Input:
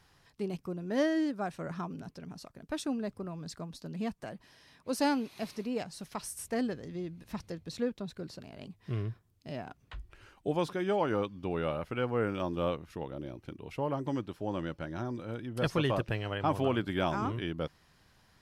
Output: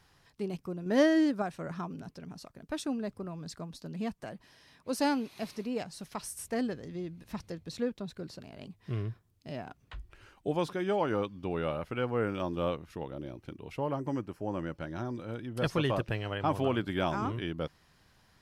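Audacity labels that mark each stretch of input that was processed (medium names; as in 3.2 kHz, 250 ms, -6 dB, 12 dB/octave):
0.860000	1.420000	gain +4.5 dB
13.970000	14.750000	peaking EQ 3.6 kHz -15 dB 0.38 oct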